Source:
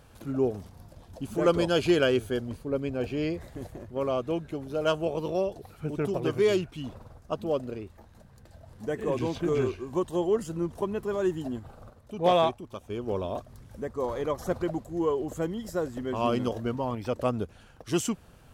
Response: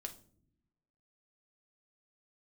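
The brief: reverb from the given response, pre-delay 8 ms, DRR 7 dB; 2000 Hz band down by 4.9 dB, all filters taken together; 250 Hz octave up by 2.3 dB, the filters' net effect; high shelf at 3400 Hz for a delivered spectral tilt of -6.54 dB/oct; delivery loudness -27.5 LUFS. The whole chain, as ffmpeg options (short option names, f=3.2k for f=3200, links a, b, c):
-filter_complex "[0:a]equalizer=f=250:t=o:g=3.5,equalizer=f=2k:t=o:g=-5,highshelf=f=3.4k:g=-6.5,asplit=2[a][b];[1:a]atrim=start_sample=2205,adelay=8[c];[b][c]afir=irnorm=-1:irlink=0,volume=-4dB[d];[a][d]amix=inputs=2:normalize=0"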